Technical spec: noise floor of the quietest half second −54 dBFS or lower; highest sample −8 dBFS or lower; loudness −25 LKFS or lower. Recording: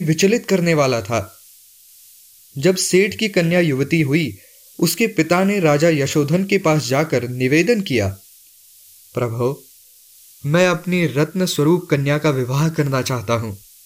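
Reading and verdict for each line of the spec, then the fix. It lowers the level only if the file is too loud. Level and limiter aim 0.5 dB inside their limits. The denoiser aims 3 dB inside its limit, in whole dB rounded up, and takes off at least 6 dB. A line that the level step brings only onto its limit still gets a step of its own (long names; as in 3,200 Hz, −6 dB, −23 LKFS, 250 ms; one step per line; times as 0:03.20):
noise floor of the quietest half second −48 dBFS: out of spec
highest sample −4.5 dBFS: out of spec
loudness −17.5 LKFS: out of spec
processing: level −8 dB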